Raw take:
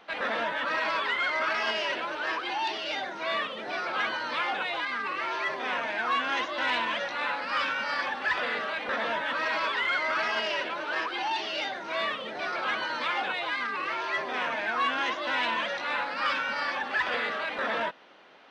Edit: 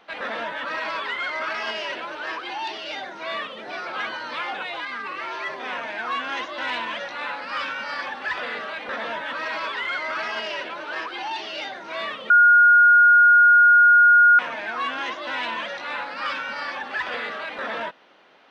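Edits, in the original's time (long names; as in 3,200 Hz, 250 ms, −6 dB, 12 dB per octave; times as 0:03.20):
0:12.30–0:14.39: beep over 1,430 Hz −10 dBFS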